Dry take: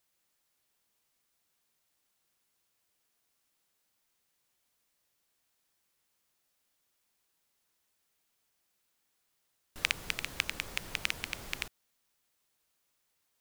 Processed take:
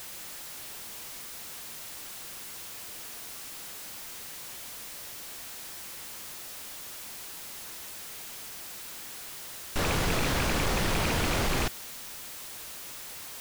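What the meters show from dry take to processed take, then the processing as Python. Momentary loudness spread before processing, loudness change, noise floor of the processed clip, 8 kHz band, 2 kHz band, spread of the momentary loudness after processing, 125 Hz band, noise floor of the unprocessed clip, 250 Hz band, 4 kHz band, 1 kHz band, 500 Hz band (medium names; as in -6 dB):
6 LU, +1.5 dB, -42 dBFS, +12.5 dB, +4.5 dB, 12 LU, +20.5 dB, -78 dBFS, +20.0 dB, +6.0 dB, +16.5 dB, +20.0 dB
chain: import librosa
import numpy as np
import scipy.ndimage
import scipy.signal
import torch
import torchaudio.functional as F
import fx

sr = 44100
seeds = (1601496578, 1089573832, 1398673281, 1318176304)

y = fx.power_curve(x, sr, exponent=0.5)
y = fx.slew_limit(y, sr, full_power_hz=150.0)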